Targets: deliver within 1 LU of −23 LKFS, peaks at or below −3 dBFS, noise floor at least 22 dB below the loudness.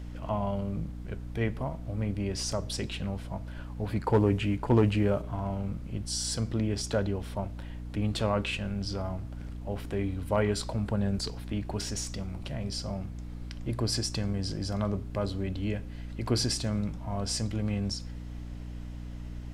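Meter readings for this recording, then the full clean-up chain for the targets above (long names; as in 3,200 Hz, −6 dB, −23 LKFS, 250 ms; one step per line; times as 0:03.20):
mains hum 60 Hz; hum harmonics up to 300 Hz; level of the hum −37 dBFS; background noise floor −40 dBFS; target noise floor −54 dBFS; integrated loudness −31.5 LKFS; sample peak −14.0 dBFS; target loudness −23.0 LKFS
→ hum removal 60 Hz, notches 5
noise reduction from a noise print 14 dB
level +8.5 dB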